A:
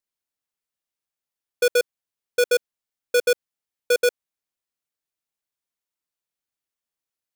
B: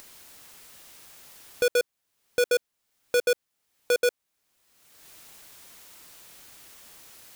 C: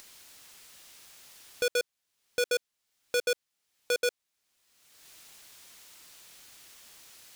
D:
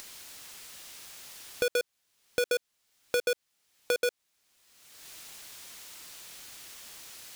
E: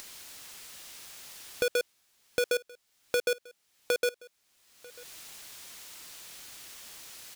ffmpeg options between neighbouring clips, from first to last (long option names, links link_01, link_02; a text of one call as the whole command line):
ffmpeg -i in.wav -filter_complex "[0:a]asplit=2[link_01][link_02];[link_02]acompressor=mode=upward:threshold=-21dB:ratio=2.5,volume=-1.5dB[link_03];[link_01][link_03]amix=inputs=2:normalize=0,alimiter=limit=-22dB:level=0:latency=1:release=21,volume=2dB" out.wav
ffmpeg -i in.wav -af "equalizer=frequency=4500:width=0.39:gain=6,volume=-6.5dB" out.wav
ffmpeg -i in.wav -af "asoftclip=type=hard:threshold=-23.5dB,acompressor=threshold=-32dB:ratio=6,volume=6dB" out.wav
ffmpeg -i in.wav -af "aecho=1:1:943:0.0708" out.wav